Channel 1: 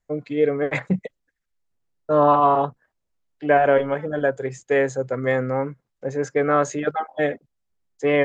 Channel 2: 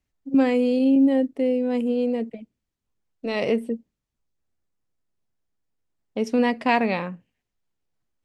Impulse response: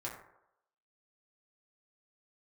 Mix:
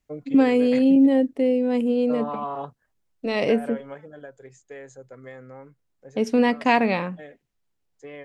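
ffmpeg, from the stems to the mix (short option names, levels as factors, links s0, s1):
-filter_complex "[0:a]acompressor=threshold=0.112:ratio=6,aemphasis=mode=production:type=cd,volume=0.422,afade=t=out:st=3.64:d=0.49:silence=0.316228[s0];[1:a]volume=1.19,asplit=2[s1][s2];[s2]apad=whole_len=363783[s3];[s0][s3]sidechaincompress=threshold=0.112:ratio=8:attack=7.8:release=665[s4];[s4][s1]amix=inputs=2:normalize=0"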